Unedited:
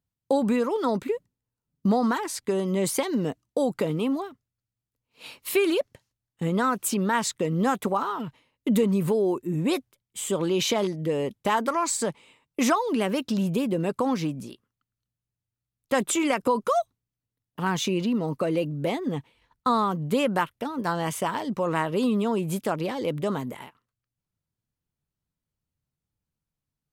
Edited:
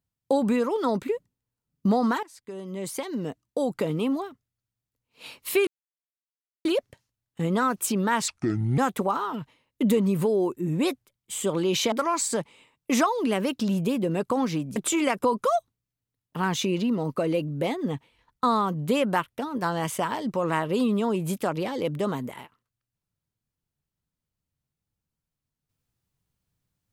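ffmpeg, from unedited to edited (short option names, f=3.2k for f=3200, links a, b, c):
-filter_complex "[0:a]asplit=7[a][b][c][d][e][f][g];[a]atrim=end=2.23,asetpts=PTS-STARTPTS,afade=t=out:st=2.226:d=0.004:c=hsin:silence=0.0891251[h];[b]atrim=start=2.23:end=5.67,asetpts=PTS-STARTPTS,afade=t=in:d=1.77:silence=0.0891251,afade=t=out:st=3.436:d=0.004:c=hsin,apad=pad_dur=0.98[i];[c]atrim=start=5.67:end=7.304,asetpts=PTS-STARTPTS,afade=t=in:d=0.004:c=hsin[j];[d]atrim=start=7.3:end=7.64,asetpts=PTS-STARTPTS,asetrate=29988,aresample=44100[k];[e]atrim=start=7.636:end=10.782[l];[f]atrim=start=11.608:end=14.452[m];[g]atrim=start=15.988[n];[h][i][j]concat=n=3:v=0:a=1[o];[o][k]acrossfade=d=0.004:c1=hsin:c2=hsin[p];[p][l]acrossfade=d=0.004:c1=hsin:c2=hsin[q];[q][m]acrossfade=d=0.004:c1=hsin:c2=hsin[r];[r][n]acrossfade=d=0.004:c1=hsin:c2=hsin"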